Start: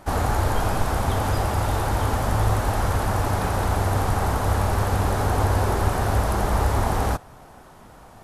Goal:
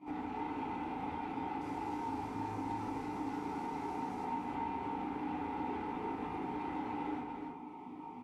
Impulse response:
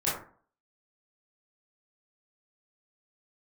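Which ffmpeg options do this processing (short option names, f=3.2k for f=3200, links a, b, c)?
-filter_complex "[0:a]asplit=3[a][b][c];[a]bandpass=f=300:t=q:w=8,volume=0dB[d];[b]bandpass=f=870:t=q:w=8,volume=-6dB[e];[c]bandpass=f=2.24k:t=q:w=8,volume=-9dB[f];[d][e][f]amix=inputs=3:normalize=0,asplit=2[g][h];[h]adelay=37,volume=-2dB[i];[g][i]amix=inputs=2:normalize=0,asoftclip=type=tanh:threshold=-34.5dB,equalizer=f=440:t=o:w=0.38:g=11[j];[1:a]atrim=start_sample=2205,asetrate=70560,aresample=44100[k];[j][k]afir=irnorm=-1:irlink=0,acompressor=threshold=-44dB:ratio=2.5,asettb=1/sr,asplit=3[l][m][n];[l]atrim=end=1.614[o];[m]atrim=start=1.61:end=4.25,asetpts=PTS-STARTPTS,afade=t=in:d=0.004:c=qsin,afade=t=out:st=2.636:d=0.004:c=qsin,highshelf=f=4.2k:t=q:w=1.5:g=8.5[p];[n]atrim=start=4.246[q];[o][p]acrossfade=d=0.004:c1=hsin:c2=qsin[r];[r][q]acrossfade=d=0.004:c1=qsin:c2=hsin,aecho=1:1:297:0.631,volume=1.5dB"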